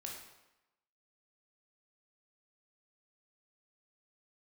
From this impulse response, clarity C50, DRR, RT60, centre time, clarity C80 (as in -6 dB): 3.0 dB, -1.5 dB, 0.95 s, 46 ms, 6.0 dB